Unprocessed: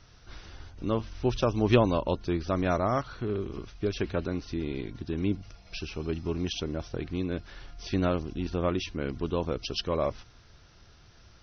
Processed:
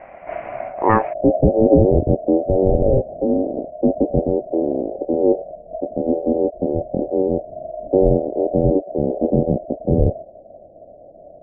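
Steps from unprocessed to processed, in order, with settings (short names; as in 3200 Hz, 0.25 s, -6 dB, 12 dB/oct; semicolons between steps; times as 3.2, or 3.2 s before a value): ring modulator 660 Hz; steep low-pass 2500 Hz 72 dB/oct, from 1.12 s 670 Hz; maximiser +19.5 dB; gain -1 dB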